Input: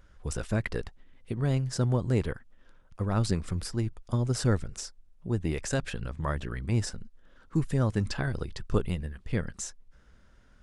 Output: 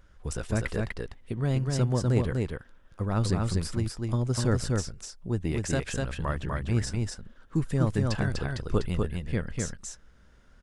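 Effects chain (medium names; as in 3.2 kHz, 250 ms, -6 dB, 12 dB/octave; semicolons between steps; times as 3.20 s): delay 247 ms -3 dB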